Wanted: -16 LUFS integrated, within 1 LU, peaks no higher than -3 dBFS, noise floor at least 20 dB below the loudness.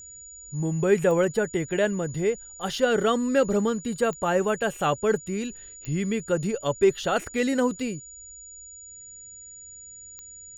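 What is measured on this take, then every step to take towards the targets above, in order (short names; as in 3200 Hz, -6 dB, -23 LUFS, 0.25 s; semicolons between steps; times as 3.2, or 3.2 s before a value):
clicks 4; steady tone 6900 Hz; tone level -42 dBFS; loudness -25.5 LUFS; peak -8.0 dBFS; loudness target -16.0 LUFS
-> de-click; notch 6900 Hz, Q 30; gain +9.5 dB; limiter -3 dBFS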